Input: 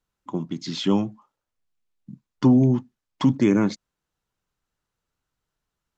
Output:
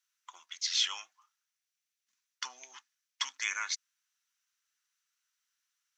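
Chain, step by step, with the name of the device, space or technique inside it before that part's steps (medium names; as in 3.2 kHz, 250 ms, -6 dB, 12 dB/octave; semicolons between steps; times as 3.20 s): headphones lying on a table (high-pass 1.5 kHz 24 dB/octave; peaking EQ 5.9 kHz +9 dB 0.22 oct); trim +2.5 dB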